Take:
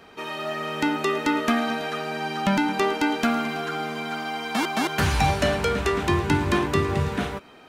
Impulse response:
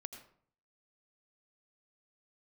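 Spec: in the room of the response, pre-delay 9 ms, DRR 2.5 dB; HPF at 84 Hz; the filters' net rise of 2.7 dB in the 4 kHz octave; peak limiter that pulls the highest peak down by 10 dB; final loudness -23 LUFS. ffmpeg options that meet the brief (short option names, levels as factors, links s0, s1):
-filter_complex "[0:a]highpass=84,equalizer=f=4000:t=o:g=3.5,alimiter=limit=0.126:level=0:latency=1,asplit=2[s0][s1];[1:a]atrim=start_sample=2205,adelay=9[s2];[s1][s2]afir=irnorm=-1:irlink=0,volume=1.12[s3];[s0][s3]amix=inputs=2:normalize=0,volume=1.33"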